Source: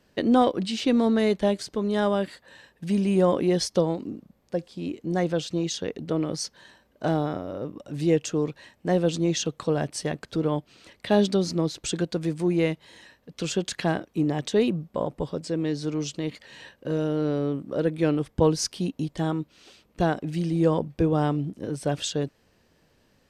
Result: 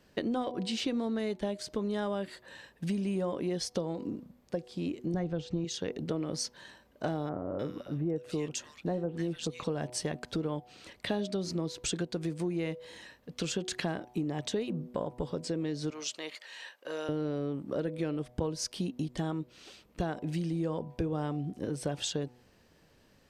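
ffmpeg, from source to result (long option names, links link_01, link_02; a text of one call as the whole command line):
ffmpeg -i in.wav -filter_complex "[0:a]asettb=1/sr,asplit=3[link_01][link_02][link_03];[link_01]atrim=end=5.144[link_04];[link_02]atrim=start=5.14:end=5.65,asetpts=PTS-STARTPTS,afade=type=in:duration=0.004:curve=qsin,afade=type=out:start_time=0.506:duration=0.004:curve=qsin,aemphasis=mode=reproduction:type=bsi[link_05];[link_03]atrim=start=5.646[link_06];[link_04][link_05]acrossfade=duration=0.004:curve1=hsin:curve2=qsin[link_07];[link_07][link_06]acrossfade=duration=0.004:curve1=qsin:curve2=hsin,asettb=1/sr,asplit=3[link_08][link_09][link_10];[link_08]atrim=end=7.294[link_11];[link_09]atrim=start=7.29:end=9.64,asetpts=PTS-STARTPTS,afade=type=in:duration=0.004:curve=qsin,afade=type=out:start_time=2.346:duration=0.004:curve=qsin,acrossover=split=1600[link_12][link_13];[link_13]adelay=300[link_14];[link_12][link_14]amix=inputs=2:normalize=0,atrim=end_sample=103635[link_15];[link_10]atrim=start=9.636[link_16];[link_11][link_15]acrossfade=duration=0.004:curve1=hsin:curve2=qsin[link_17];[link_17][link_16]acrossfade=duration=0.004:curve1=qsin:curve2=hsin,asettb=1/sr,asplit=3[link_18][link_19][link_20];[link_18]atrim=end=15.904[link_21];[link_19]atrim=start=15.9:end=17.09,asetpts=PTS-STARTPTS,afade=type=in:duration=0.004:curve=qsin,afade=type=out:start_time=1.186:duration=0.004:curve=qsin,highpass=760[link_22];[link_20]atrim=start=17.086[link_23];[link_21][link_22]acrossfade=duration=0.004:curve1=hsin:curve2=qsin[link_24];[link_24][link_23]acrossfade=duration=0.004:curve1=qsin:curve2=hsin,bandreject=frequency=123:width_type=h:width=4,bandreject=frequency=246:width_type=h:width=4,bandreject=frequency=369:width_type=h:width=4,bandreject=frequency=492:width_type=h:width=4,bandreject=frequency=615:width_type=h:width=4,bandreject=frequency=738:width_type=h:width=4,bandreject=frequency=861:width_type=h:width=4,bandreject=frequency=984:width_type=h:width=4,acompressor=threshold=-30dB:ratio=6" out.wav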